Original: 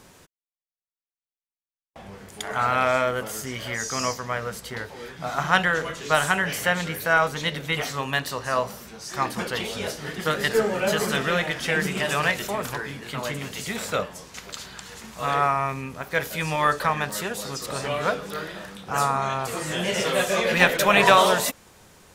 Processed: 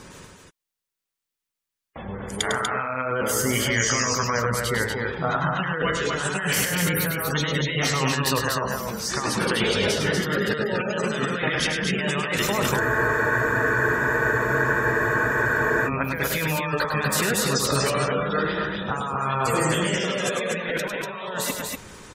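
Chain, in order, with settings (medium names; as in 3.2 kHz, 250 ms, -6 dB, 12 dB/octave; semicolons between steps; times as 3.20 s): spectral gate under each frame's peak -20 dB strong; peaking EQ 710 Hz -6.5 dB 0.41 oct; compressor with a negative ratio -31 dBFS, ratio -1; loudspeakers at several distances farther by 35 m -6 dB, 83 m -4 dB; spectral freeze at 12.82 s, 3.06 s; trim +4 dB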